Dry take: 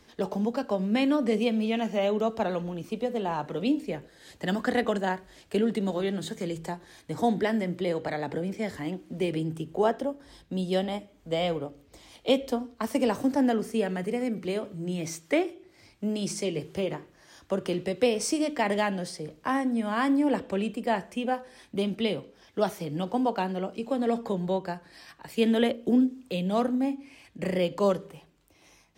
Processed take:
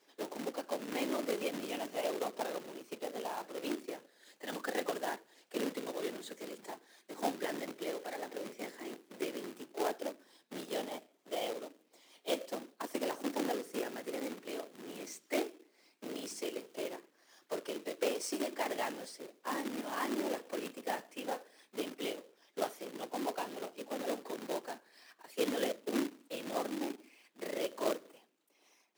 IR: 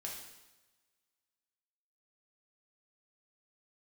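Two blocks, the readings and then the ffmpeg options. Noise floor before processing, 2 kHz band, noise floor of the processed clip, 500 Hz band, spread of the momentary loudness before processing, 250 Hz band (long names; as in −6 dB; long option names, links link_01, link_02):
−60 dBFS, −8.0 dB, −72 dBFS, −10.0 dB, 10 LU, −14.0 dB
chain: -af "afftfilt=real='hypot(re,im)*cos(2*PI*random(0))':imag='hypot(re,im)*sin(2*PI*random(1))':win_size=512:overlap=0.75,acrusher=bits=2:mode=log:mix=0:aa=0.000001,highpass=frequency=270:width=0.5412,highpass=frequency=270:width=1.3066,volume=-4dB"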